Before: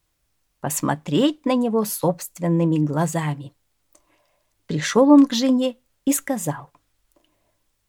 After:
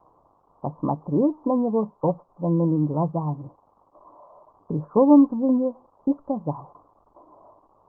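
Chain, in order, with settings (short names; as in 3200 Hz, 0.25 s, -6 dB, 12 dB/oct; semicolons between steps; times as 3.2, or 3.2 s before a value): switching spikes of -17.5 dBFS; steep low-pass 1100 Hz 72 dB/oct; gain -2 dB; Opus 24 kbps 48000 Hz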